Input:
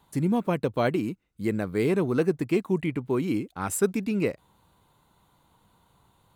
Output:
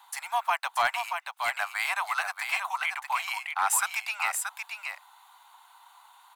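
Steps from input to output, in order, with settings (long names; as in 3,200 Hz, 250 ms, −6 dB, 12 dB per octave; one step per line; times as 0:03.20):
Butterworth high-pass 750 Hz 72 dB per octave
high-shelf EQ 2,700 Hz −3 dB
in parallel at +2.5 dB: brickwall limiter −30 dBFS, peak gain reduction 10.5 dB
on the sum: gain into a clipping stage and back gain 20.5 dB
on a send: single-tap delay 630 ms −6 dB
on the sum: level +4 dB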